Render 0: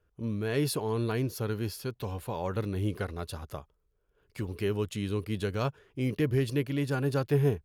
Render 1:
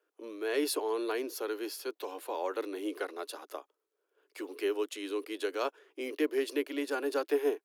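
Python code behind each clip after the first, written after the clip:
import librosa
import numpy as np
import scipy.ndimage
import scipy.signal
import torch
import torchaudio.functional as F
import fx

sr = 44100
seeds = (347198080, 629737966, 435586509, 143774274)

y = scipy.signal.sosfilt(scipy.signal.butter(12, 290.0, 'highpass', fs=sr, output='sos'), x)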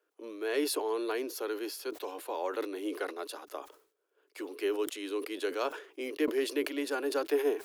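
y = fx.sustainer(x, sr, db_per_s=120.0)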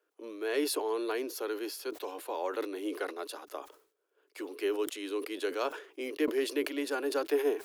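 y = x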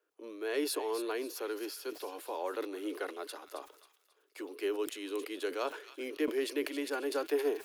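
y = fx.echo_wet_highpass(x, sr, ms=270, feedback_pct=36, hz=2000.0, wet_db=-9.5)
y = y * librosa.db_to_amplitude(-2.5)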